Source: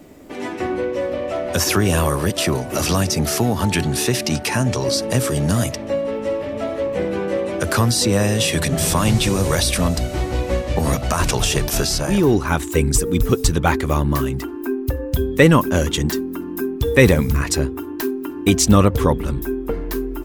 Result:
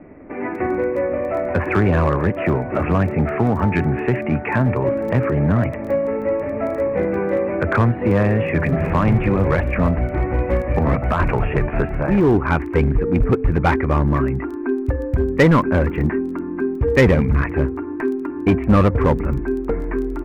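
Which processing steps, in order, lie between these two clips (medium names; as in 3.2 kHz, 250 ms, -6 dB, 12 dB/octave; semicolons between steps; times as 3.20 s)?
steep low-pass 2.4 kHz 72 dB/octave; in parallel at -6 dB: wavefolder -13.5 dBFS; on the sum: crackle 11 per s -29 dBFS; trim -1.5 dB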